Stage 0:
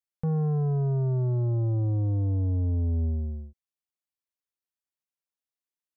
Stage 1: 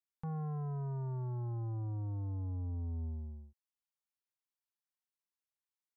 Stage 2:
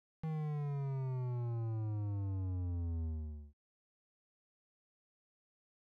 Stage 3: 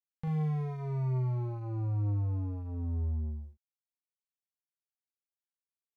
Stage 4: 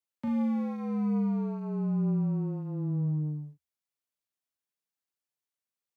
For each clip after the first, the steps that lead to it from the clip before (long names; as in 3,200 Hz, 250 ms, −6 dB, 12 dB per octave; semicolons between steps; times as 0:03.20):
low shelf with overshoot 720 Hz −6 dB, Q 3; level −6.5 dB
running median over 41 samples
double-tracking delay 39 ms −6 dB; level +5 dB
frequency shifter +74 Hz; level +2.5 dB